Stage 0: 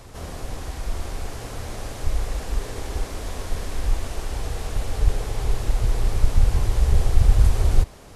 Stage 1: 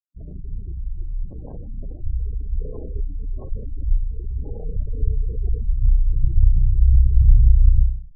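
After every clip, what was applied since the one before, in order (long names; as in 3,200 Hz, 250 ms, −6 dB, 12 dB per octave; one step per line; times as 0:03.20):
flutter between parallel walls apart 5.5 metres, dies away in 0.65 s
slack as between gear wheels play −23.5 dBFS
gate on every frequency bin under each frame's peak −20 dB strong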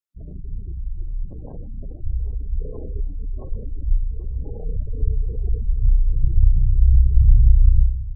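repeating echo 793 ms, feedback 52%, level −17 dB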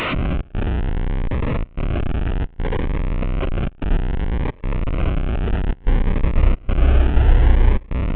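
linear delta modulator 16 kbit/s, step −12 dBFS
gate pattern "xxx.xxxxxxxx.xx" 110 BPM −24 dB
phaser whose notches keep moving one way rising 0.62 Hz
level −1 dB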